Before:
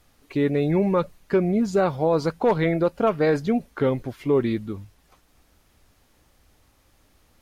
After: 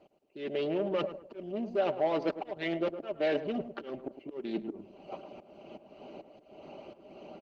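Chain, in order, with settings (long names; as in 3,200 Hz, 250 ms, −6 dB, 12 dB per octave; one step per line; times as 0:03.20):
adaptive Wiener filter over 25 samples
harmonic and percussive parts rebalanced percussive +9 dB
high-shelf EQ 2,500 Hz +4.5 dB
comb filter 5.1 ms, depth 53%
automatic gain control gain up to 13 dB
brickwall limiter −7 dBFS, peak gain reduction 6.5 dB
reversed playback
downward compressor 8 to 1, threshold −28 dBFS, peak gain reduction 17 dB
reversed playback
volume swells 305 ms
soft clipping −26 dBFS, distortion −16 dB
loudspeaker in its box 270–5,500 Hz, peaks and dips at 310 Hz +8 dB, 630 Hz +10 dB, 1,100 Hz −5 dB, 2,900 Hz +10 dB
on a send: tape delay 107 ms, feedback 40%, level −9 dB, low-pass 1,200 Hz
on the sum: Opus 20 kbit/s 48,000 Hz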